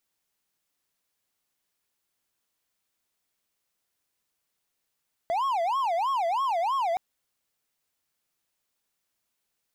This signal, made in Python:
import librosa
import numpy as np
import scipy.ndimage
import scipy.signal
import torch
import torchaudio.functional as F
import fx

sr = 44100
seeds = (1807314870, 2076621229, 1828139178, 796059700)

y = fx.siren(sr, length_s=1.67, kind='wail', low_hz=664.0, high_hz=1100.0, per_s=3.1, wave='triangle', level_db=-21.5)